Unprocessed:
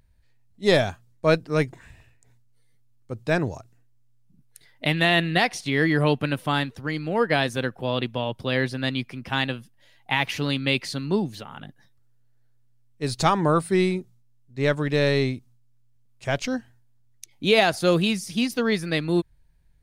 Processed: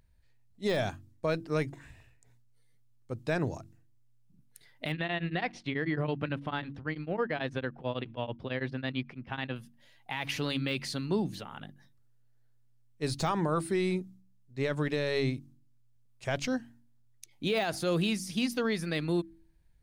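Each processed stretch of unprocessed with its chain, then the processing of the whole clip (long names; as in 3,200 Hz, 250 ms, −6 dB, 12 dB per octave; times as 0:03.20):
0:04.92–0:09.56: low-pass filter 3,000 Hz + tremolo along a rectified sine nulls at 9.1 Hz
whole clip: hum removal 47.01 Hz, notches 7; de-essing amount 60%; brickwall limiter −16.5 dBFS; level −4 dB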